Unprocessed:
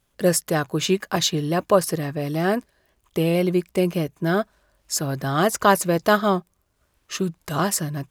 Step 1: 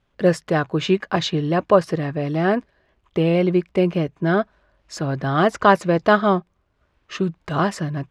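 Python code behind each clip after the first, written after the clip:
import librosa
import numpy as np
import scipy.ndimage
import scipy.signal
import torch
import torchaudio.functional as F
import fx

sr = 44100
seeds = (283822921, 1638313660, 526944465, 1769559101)

y = scipy.signal.sosfilt(scipy.signal.butter(2, 3100.0, 'lowpass', fs=sr, output='sos'), x)
y = y * 10.0 ** (2.5 / 20.0)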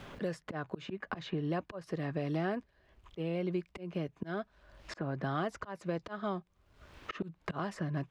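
y = fx.auto_swell(x, sr, attack_ms=780.0)
y = fx.band_squash(y, sr, depth_pct=100)
y = y * 10.0 ** (-7.5 / 20.0)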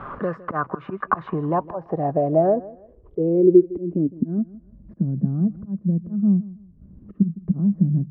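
y = fx.filter_sweep_lowpass(x, sr, from_hz=1200.0, to_hz=200.0, start_s=1.07, end_s=4.74, q=5.8)
y = fx.echo_feedback(y, sr, ms=159, feedback_pct=27, wet_db=-19.0)
y = y * 10.0 ** (9.0 / 20.0)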